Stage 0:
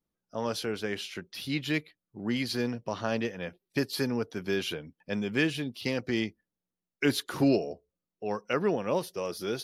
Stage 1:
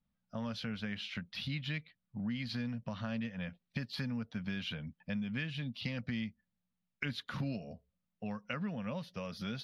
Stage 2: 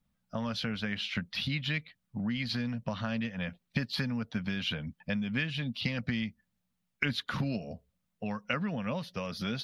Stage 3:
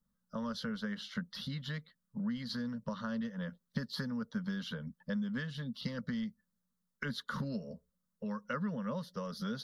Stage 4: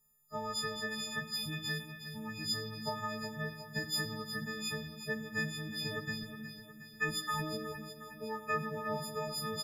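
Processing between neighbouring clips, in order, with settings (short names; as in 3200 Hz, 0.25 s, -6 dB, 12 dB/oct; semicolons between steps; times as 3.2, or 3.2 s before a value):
EQ curve 230 Hz 0 dB, 360 Hz -25 dB, 560 Hz -8 dB, 2200 Hz -5 dB, 3800 Hz -6 dB, 8800 Hz -25 dB; compressor 4:1, threshold -42 dBFS, peak gain reduction 12 dB; dynamic EQ 800 Hz, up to -6 dB, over -59 dBFS, Q 1.7; gain +6 dB
harmonic-percussive split harmonic -4 dB; gain +8 dB
fixed phaser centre 490 Hz, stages 8; gain -2 dB
frequency quantiser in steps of 6 st; feedback echo 0.363 s, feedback 56%, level -11 dB; reverb RT60 2.2 s, pre-delay 41 ms, DRR 10.5 dB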